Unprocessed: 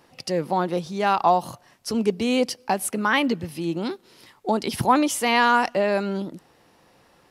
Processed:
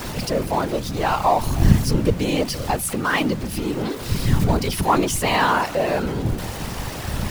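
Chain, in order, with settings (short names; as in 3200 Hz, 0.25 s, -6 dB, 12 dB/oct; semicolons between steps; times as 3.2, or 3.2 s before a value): zero-crossing step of -25 dBFS; wind noise 93 Hz -22 dBFS; whisperiser; gain -1.5 dB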